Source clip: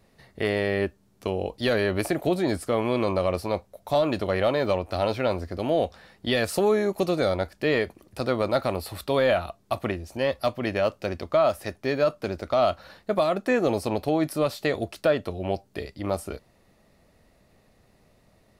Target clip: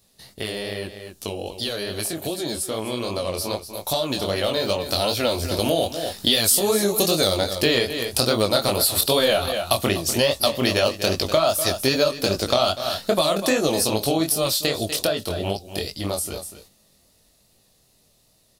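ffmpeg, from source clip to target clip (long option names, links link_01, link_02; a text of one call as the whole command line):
ffmpeg -i in.wav -filter_complex "[0:a]flanger=delay=18:depth=7.3:speed=2.5,aecho=1:1:244:0.188,aexciter=amount=4.6:drive=6.3:freq=3000,asettb=1/sr,asplit=3[link_01][link_02][link_03];[link_01]atrim=end=4.804[link_04];[link_02]atrim=start=4.8:end=7.38,asetpts=PTS-STARTPTS,afade=type=in:duration=0.004:curve=qsin,afade=type=out:start_time=2.576:duration=0.004:curve=qsin,highshelf=frequency=11000:gain=8.5[link_05];[link_03]atrim=start=7.376[link_06];[link_04][link_05]acrossfade=duration=0.004:curve1=hsin:curve2=qsin[link_07];[link_07][link_06]acrossfade=duration=0.004:curve1=qsin:curve2=hsin,acompressor=threshold=-31dB:ratio=4,agate=range=-7dB:threshold=-55dB:ratio=16:detection=peak,dynaudnorm=framelen=700:gausssize=13:maxgain=9.5dB,volume=4.5dB" out.wav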